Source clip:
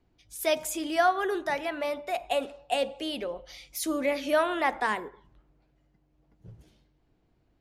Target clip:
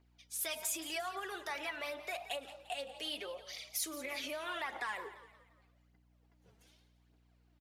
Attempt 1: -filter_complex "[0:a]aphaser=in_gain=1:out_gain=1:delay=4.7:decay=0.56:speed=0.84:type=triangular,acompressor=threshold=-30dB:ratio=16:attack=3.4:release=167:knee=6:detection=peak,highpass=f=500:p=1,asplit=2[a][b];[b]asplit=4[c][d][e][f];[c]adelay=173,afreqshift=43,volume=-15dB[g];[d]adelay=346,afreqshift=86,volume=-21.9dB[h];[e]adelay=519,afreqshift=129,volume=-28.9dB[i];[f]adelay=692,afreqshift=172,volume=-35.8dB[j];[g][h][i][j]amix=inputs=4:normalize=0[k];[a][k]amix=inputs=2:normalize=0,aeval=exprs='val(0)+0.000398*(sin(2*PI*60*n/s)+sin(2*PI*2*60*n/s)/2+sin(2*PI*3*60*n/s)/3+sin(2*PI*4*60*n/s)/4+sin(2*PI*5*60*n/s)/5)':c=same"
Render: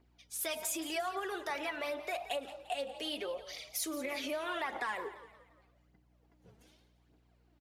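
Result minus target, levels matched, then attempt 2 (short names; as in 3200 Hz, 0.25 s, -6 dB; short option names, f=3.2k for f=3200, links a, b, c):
500 Hz band +3.5 dB
-filter_complex "[0:a]aphaser=in_gain=1:out_gain=1:delay=4.7:decay=0.56:speed=0.84:type=triangular,acompressor=threshold=-30dB:ratio=16:attack=3.4:release=167:knee=6:detection=peak,highpass=f=1.3k:p=1,asplit=2[a][b];[b]asplit=4[c][d][e][f];[c]adelay=173,afreqshift=43,volume=-15dB[g];[d]adelay=346,afreqshift=86,volume=-21.9dB[h];[e]adelay=519,afreqshift=129,volume=-28.9dB[i];[f]adelay=692,afreqshift=172,volume=-35.8dB[j];[g][h][i][j]amix=inputs=4:normalize=0[k];[a][k]amix=inputs=2:normalize=0,aeval=exprs='val(0)+0.000398*(sin(2*PI*60*n/s)+sin(2*PI*2*60*n/s)/2+sin(2*PI*3*60*n/s)/3+sin(2*PI*4*60*n/s)/4+sin(2*PI*5*60*n/s)/5)':c=same"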